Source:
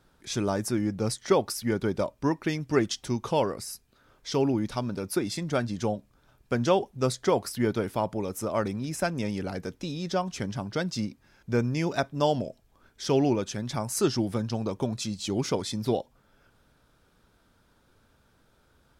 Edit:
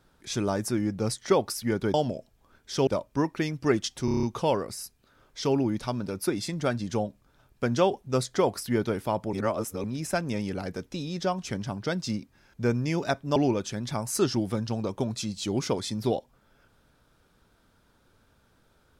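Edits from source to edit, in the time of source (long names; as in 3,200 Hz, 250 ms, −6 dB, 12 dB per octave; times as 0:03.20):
0:03.12: stutter 0.03 s, 7 plays
0:08.22–0:08.73: reverse
0:12.25–0:13.18: move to 0:01.94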